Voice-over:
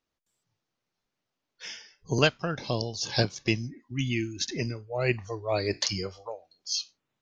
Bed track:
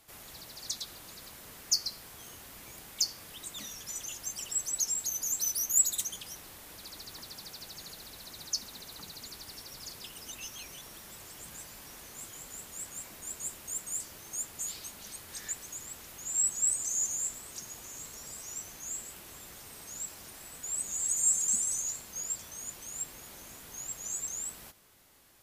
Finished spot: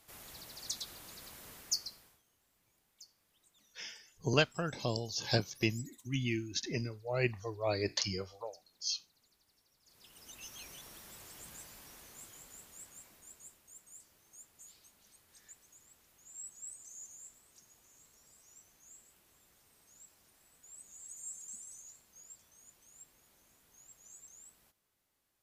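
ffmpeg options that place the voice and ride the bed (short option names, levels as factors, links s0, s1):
-filter_complex "[0:a]adelay=2150,volume=0.531[s0];[1:a]volume=9.44,afade=t=out:st=1.49:d=0.73:silence=0.0630957,afade=t=in:st=9.84:d=0.8:silence=0.0749894,afade=t=out:st=11.44:d=2.2:silence=0.188365[s1];[s0][s1]amix=inputs=2:normalize=0"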